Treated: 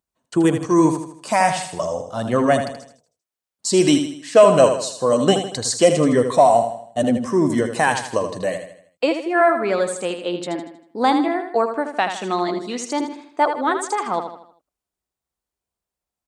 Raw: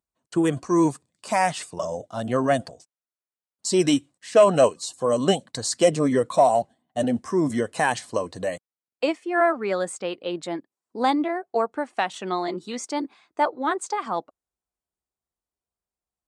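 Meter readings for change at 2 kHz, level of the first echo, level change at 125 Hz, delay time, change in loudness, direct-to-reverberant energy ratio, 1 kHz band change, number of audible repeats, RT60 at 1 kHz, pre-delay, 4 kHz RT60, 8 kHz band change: +4.5 dB, -8.0 dB, +5.0 dB, 79 ms, +4.5 dB, none, +5.0 dB, 4, none, none, none, +5.0 dB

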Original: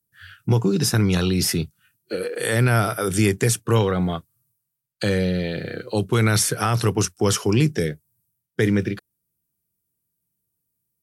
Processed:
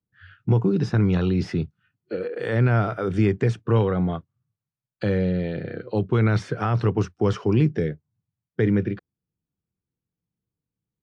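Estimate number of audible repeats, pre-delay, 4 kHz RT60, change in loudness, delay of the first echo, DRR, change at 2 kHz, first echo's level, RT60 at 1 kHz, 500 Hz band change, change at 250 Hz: none, none, none, -2.0 dB, none, none, -6.0 dB, none, none, -1.5 dB, -1.0 dB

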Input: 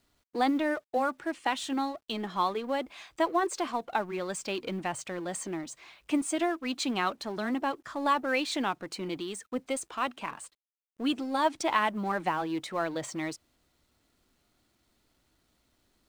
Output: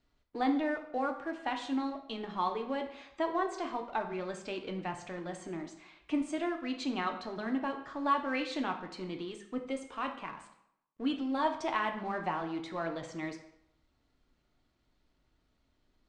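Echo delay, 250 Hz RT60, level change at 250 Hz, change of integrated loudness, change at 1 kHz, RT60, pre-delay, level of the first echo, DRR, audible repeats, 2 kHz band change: none, 0.75 s, -2.5 dB, -4.0 dB, -4.0 dB, 0.75 s, 3 ms, none, 4.0 dB, none, -5.0 dB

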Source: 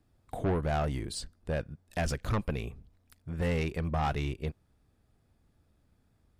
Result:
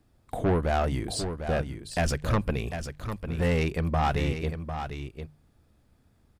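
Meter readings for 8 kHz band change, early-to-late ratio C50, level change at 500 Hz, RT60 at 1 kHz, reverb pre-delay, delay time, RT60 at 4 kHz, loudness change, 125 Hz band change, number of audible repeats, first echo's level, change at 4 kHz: +5.5 dB, none, +5.5 dB, none, none, 0.75 s, none, +4.5 dB, +4.5 dB, 1, -8.5 dB, +5.5 dB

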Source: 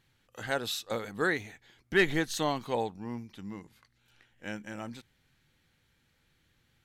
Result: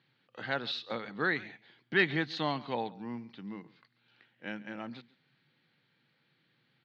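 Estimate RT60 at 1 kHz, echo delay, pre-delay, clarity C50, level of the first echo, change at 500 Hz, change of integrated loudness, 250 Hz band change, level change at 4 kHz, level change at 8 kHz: none, 0.138 s, none, none, -20.5 dB, -4.5 dB, -2.0 dB, -2.0 dB, -1.0 dB, under -20 dB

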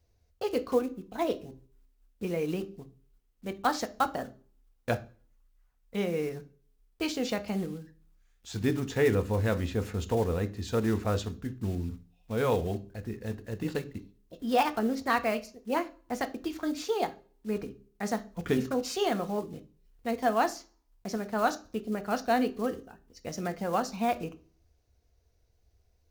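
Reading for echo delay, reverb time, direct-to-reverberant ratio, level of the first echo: none, 0.45 s, 9.0 dB, none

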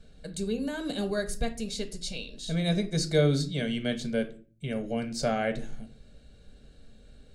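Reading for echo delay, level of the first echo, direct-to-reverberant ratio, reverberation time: none, none, 7.5 dB, 0.40 s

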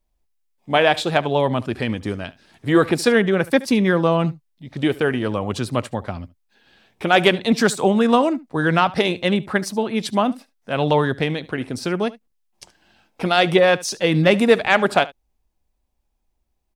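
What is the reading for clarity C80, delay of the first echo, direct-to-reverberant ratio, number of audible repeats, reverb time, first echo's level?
none, 73 ms, none, 1, none, -20.0 dB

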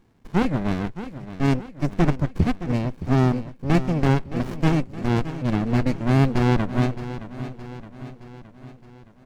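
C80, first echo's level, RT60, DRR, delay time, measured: none, -13.0 dB, none, none, 0.618 s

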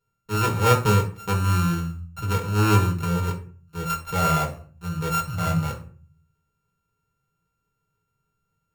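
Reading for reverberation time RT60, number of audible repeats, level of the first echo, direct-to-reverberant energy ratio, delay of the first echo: 0.45 s, none, none, -2.0 dB, none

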